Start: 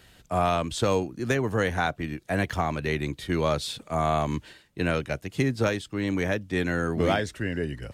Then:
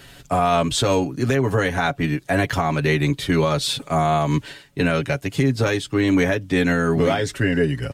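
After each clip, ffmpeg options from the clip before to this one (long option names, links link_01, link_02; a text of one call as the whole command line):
ffmpeg -i in.wav -af "aecho=1:1:7.2:0.66,alimiter=limit=-18.5dB:level=0:latency=1:release=178,volume=9dB" out.wav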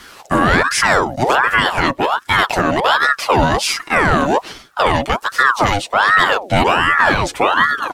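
ffmpeg -i in.wav -af "aeval=exprs='val(0)*sin(2*PI*990*n/s+990*0.6/1.3*sin(2*PI*1.3*n/s))':channel_layout=same,volume=8dB" out.wav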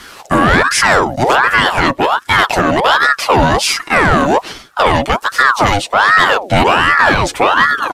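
ffmpeg -i in.wav -af "asoftclip=type=tanh:threshold=-5dB,aresample=32000,aresample=44100,volume=4.5dB" out.wav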